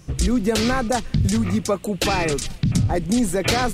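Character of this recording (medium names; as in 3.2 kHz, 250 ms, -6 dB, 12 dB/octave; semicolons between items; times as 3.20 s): noise floor -41 dBFS; spectral tilt -5.0 dB/octave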